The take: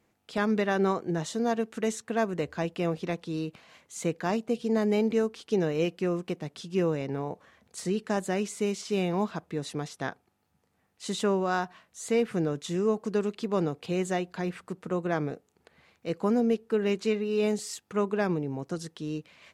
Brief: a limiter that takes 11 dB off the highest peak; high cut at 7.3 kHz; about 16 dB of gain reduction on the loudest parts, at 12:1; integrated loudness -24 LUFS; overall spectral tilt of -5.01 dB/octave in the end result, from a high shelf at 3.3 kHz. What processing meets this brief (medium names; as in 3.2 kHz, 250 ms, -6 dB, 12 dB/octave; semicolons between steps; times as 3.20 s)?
low-pass 7.3 kHz; treble shelf 3.3 kHz -5.5 dB; compression 12:1, threshold -38 dBFS; trim +23.5 dB; peak limiter -14.5 dBFS